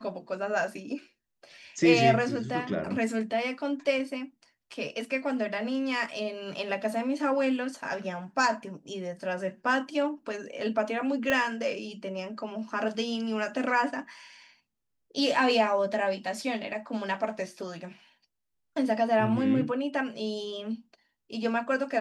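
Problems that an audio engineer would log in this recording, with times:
11.30 s: pop -13 dBFS

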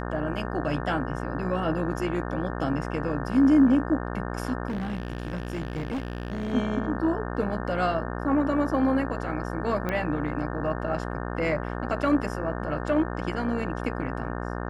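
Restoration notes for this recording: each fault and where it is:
buzz 60 Hz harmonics 30 -32 dBFS
4.68–6.53 s: clipped -26.5 dBFS
9.89 s: pop -16 dBFS

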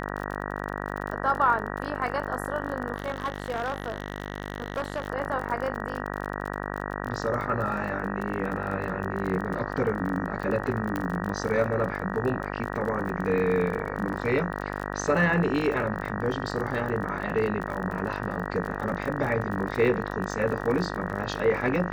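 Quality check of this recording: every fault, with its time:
buzz 50 Hz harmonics 38 -33 dBFS
crackle 37 per s -32 dBFS
2.96–5.08 s: clipped -24 dBFS
10.96 s: pop -16 dBFS

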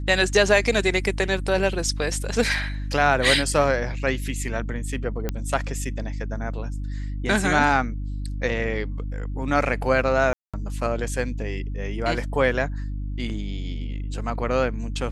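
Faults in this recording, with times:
hum 50 Hz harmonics 6 -29 dBFS
5.29 s: pop -12 dBFS
10.33–10.54 s: dropout 206 ms

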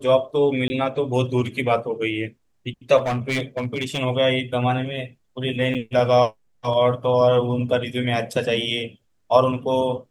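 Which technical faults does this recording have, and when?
0.68–0.70 s: dropout 20 ms
2.97–3.99 s: clipped -19.5 dBFS
5.74–5.75 s: dropout 7.8 ms

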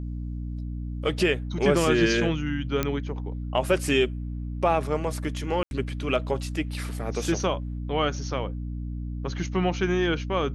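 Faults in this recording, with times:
hum 60 Hz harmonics 5 -32 dBFS
2.83 s: pop -10 dBFS
5.63–5.71 s: dropout 81 ms

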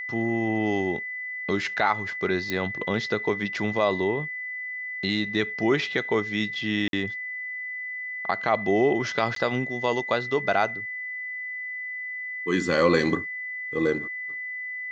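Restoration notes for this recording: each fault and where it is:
whine 2 kHz -31 dBFS
2.50 s: pop -14 dBFS
6.88–6.93 s: dropout 52 ms
9.35–9.36 s: dropout 13 ms

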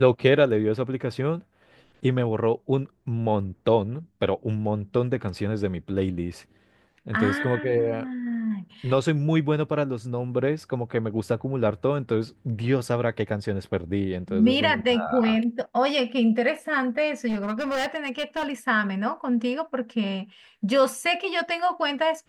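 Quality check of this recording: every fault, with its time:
17.28–18.53 s: clipped -23 dBFS

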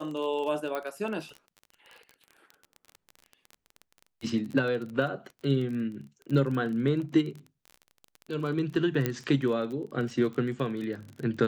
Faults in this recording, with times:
crackle 26 per s -35 dBFS
0.75 s: pop -20 dBFS
9.06 s: pop -13 dBFS

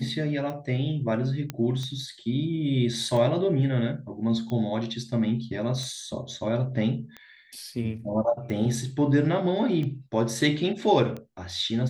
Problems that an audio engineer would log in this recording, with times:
tick 45 rpm -23 dBFS
1.50 s: pop -16 dBFS

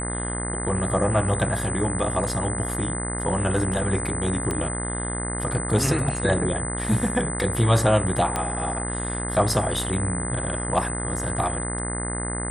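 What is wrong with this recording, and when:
buzz 60 Hz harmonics 35 -30 dBFS
whine 8.1 kHz -30 dBFS
4.51 s: pop -13 dBFS
8.36 s: pop -11 dBFS

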